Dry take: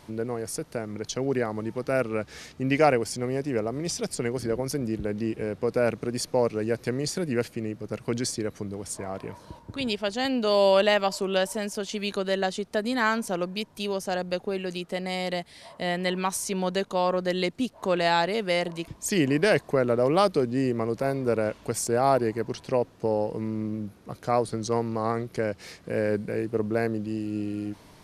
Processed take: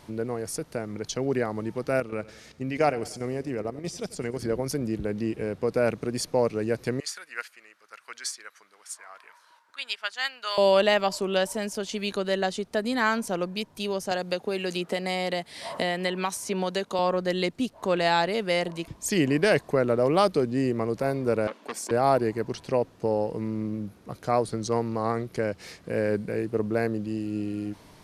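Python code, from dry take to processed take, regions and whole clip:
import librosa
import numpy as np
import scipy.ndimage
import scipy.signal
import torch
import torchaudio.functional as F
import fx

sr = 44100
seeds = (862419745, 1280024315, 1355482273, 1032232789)

y = fx.chain(x, sr, fx.level_steps(step_db=10),
    fx.echo_feedback(ms=92, feedback_pct=52, wet_db=-18.5), at=(2.0, 4.42))
y = fx.chain(y, sr, fx.highpass_res(hz=1400.0, q=2.1),
    fx.upward_expand(threshold_db=-39.0, expansion=1.5), at=(7.0, 10.58))
y = fx.chain(y, sr, fx.highpass(hz=190.0, slope=6),
    fx.band_squash(depth_pct=100), at=(14.11, 16.99))
y = fx.chain(y, sr, fx.steep_highpass(hz=210.0, slope=36),
    fx.high_shelf(hz=3900.0, db=-7.0),
    fx.transformer_sat(knee_hz=1900.0), at=(21.47, 21.91))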